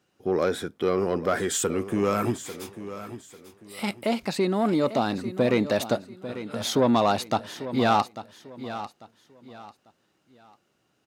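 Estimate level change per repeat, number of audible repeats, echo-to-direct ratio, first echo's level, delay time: −10.5 dB, 3, −12.5 dB, −13.0 dB, 845 ms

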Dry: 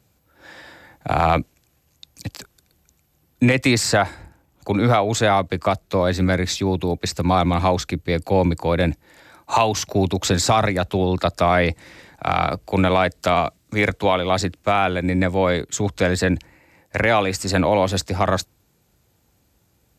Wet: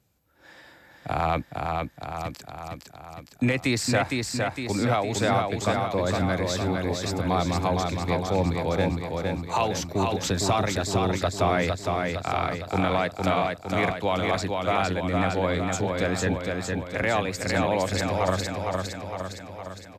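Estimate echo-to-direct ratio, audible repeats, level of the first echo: −1.5 dB, 7, −3.5 dB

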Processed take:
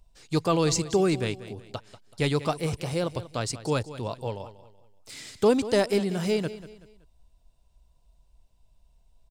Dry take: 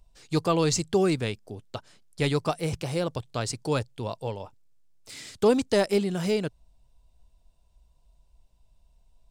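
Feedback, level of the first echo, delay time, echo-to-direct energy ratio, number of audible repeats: 37%, −15.0 dB, 189 ms, −14.5 dB, 3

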